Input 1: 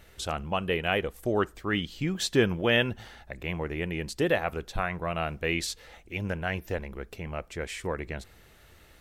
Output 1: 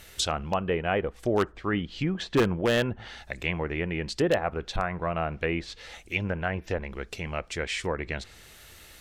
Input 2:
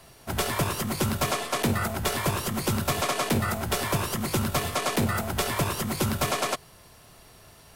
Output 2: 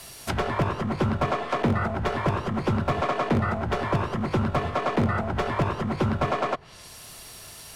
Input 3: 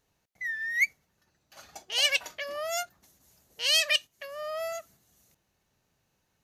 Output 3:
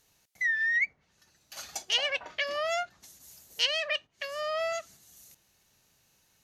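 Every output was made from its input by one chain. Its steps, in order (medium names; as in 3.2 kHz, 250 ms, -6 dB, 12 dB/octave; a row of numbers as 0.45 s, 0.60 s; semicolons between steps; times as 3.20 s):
low-pass that closes with the level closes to 1.2 kHz, closed at -26 dBFS; wavefolder -17 dBFS; treble shelf 2.3 kHz +11.5 dB; peak normalisation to -12 dBFS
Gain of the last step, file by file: +1.5 dB, +2.5 dB, +1.5 dB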